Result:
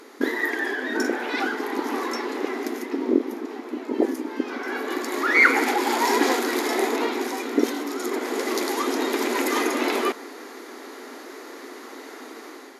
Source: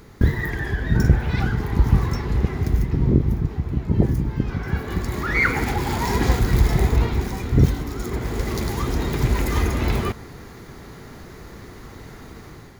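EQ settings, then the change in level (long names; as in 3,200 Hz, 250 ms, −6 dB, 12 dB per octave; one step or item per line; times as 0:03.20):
linear-phase brick-wall band-pass 240–14,000 Hz
+4.0 dB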